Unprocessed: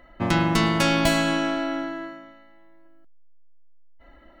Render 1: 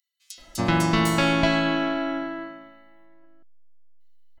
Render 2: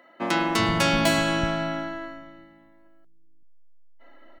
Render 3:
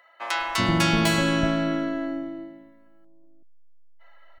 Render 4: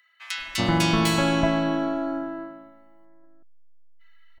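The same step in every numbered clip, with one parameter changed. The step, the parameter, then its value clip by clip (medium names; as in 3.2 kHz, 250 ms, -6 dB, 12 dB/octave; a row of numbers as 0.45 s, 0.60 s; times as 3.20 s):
bands offset in time, split: 5 kHz, 220 Hz, 640 Hz, 1.7 kHz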